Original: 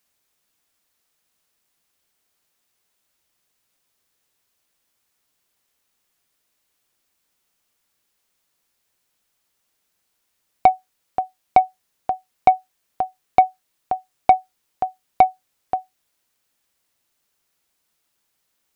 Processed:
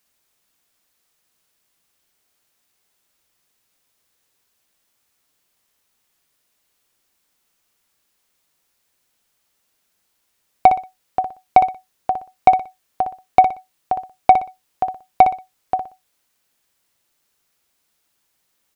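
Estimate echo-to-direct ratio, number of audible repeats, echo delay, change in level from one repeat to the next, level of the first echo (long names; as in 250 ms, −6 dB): −7.5 dB, 3, 61 ms, −11.5 dB, −8.0 dB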